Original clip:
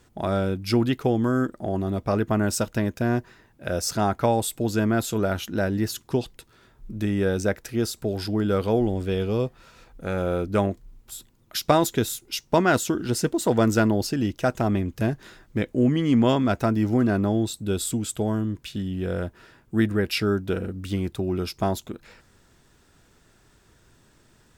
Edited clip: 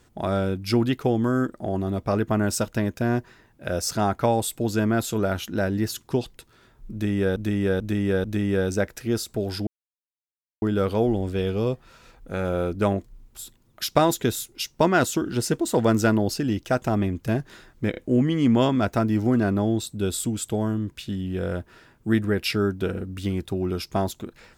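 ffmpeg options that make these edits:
-filter_complex "[0:a]asplit=7[s0][s1][s2][s3][s4][s5][s6];[s0]atrim=end=7.362[s7];[s1]atrim=start=6.918:end=7.362[s8];[s2]atrim=start=6.918:end=7.362[s9];[s3]atrim=start=6.918:end=8.35,asetpts=PTS-STARTPTS,afade=t=out:st=1.428:d=0.004:c=hsin,apad=pad_dur=0.95[s10];[s4]atrim=start=8.35:end=15.672,asetpts=PTS-STARTPTS,afade=t=in:d=0.004:c=hsin[s11];[s5]atrim=start=15.638:end=15.672[s12];[s6]atrim=start=15.638[s13];[s7][s8]acrossfade=d=0.004:c1=hsin:c2=hsin[s14];[s14][s9]acrossfade=d=0.004:c1=hsin:c2=hsin[s15];[s10][s11]concat=n=2:v=0:a=1[s16];[s15][s16]acrossfade=d=0.004:c1=hsin:c2=hsin[s17];[s17][s12]acrossfade=d=0.004:c1=hsin:c2=hsin[s18];[s18][s13]acrossfade=d=0.004:c1=hsin:c2=hsin"

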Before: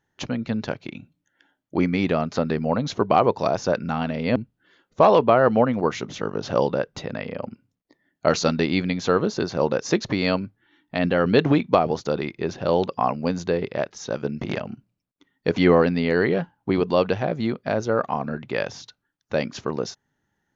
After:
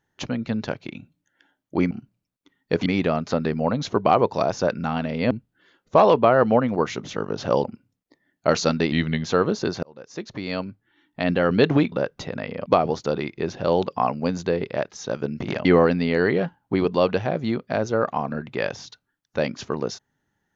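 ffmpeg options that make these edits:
-filter_complex "[0:a]asplit=10[s0][s1][s2][s3][s4][s5][s6][s7][s8][s9];[s0]atrim=end=1.912[s10];[s1]atrim=start=14.658:end=15.612[s11];[s2]atrim=start=1.908:end=6.692[s12];[s3]atrim=start=7.428:end=8.714[s13];[s4]atrim=start=8.71:end=9,asetpts=PTS-STARTPTS,asetrate=38808,aresample=44100[s14];[s5]atrim=start=8.996:end=9.58,asetpts=PTS-STARTPTS,afade=t=out:st=0.58:d=0.004:c=hsin[s15];[s6]atrim=start=9.58:end=11.672,asetpts=PTS-STARTPTS,afade=t=in:d=1.43[s16];[s7]atrim=start=6.688:end=7.432[s17];[s8]atrim=start=11.668:end=14.662[s18];[s9]atrim=start=15.608[s19];[s10][s11]acrossfade=d=0.004:c1=hsin:c2=hsin[s20];[s20][s12]acrossfade=d=0.004:c1=hsin:c2=hsin[s21];[s21][s13]acrossfade=d=0.004:c1=hsin:c2=hsin[s22];[s22][s14]acrossfade=d=0.004:c1=hsin:c2=hsin[s23];[s15][s16]concat=n=2:v=0:a=1[s24];[s23][s24]acrossfade=d=0.004:c1=hsin:c2=hsin[s25];[s25][s17]acrossfade=d=0.004:c1=hsin:c2=hsin[s26];[s26][s18]acrossfade=d=0.004:c1=hsin:c2=hsin[s27];[s27][s19]acrossfade=d=0.004:c1=hsin:c2=hsin"

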